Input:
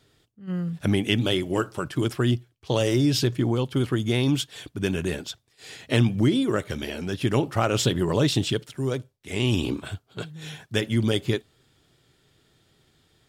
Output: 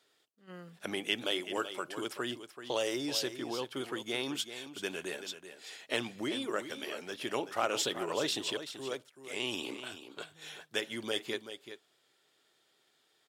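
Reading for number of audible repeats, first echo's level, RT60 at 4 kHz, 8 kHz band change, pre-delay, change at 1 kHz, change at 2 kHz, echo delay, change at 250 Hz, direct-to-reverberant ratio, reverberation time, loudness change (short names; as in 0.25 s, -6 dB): 1, -11.0 dB, none, -5.5 dB, none, -6.0 dB, -5.5 dB, 0.382 s, -15.5 dB, none, none, -11.0 dB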